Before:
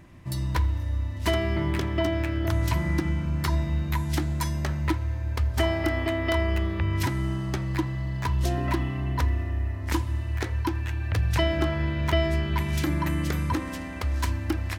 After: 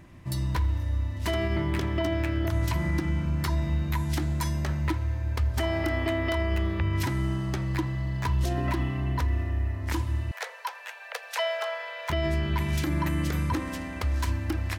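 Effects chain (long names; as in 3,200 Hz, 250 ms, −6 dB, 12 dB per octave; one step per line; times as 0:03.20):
0:10.31–0:12.10: Butterworth high-pass 460 Hz 96 dB per octave
brickwall limiter −18 dBFS, peak gain reduction 6.5 dB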